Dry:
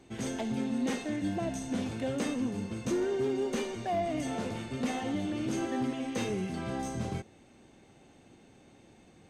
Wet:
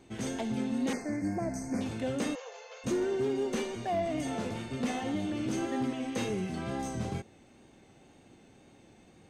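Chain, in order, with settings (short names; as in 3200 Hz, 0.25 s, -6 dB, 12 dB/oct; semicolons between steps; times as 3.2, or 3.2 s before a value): 0.93–1.81 elliptic band-stop 2300–4600 Hz, stop band 40 dB; wow and flutter 28 cents; 2.35–2.84 brick-wall FIR band-pass 430–7500 Hz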